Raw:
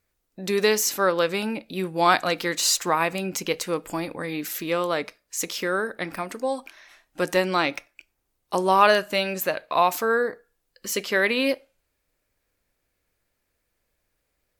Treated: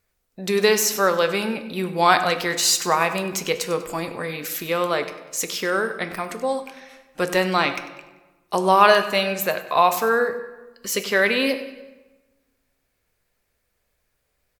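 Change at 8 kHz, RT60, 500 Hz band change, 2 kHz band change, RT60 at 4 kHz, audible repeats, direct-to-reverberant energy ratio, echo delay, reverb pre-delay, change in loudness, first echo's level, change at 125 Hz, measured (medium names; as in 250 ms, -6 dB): +3.0 dB, 1.2 s, +2.5 dB, +3.0 dB, 0.80 s, 3, 8.0 dB, 97 ms, 3 ms, +3.0 dB, -15.5 dB, +3.0 dB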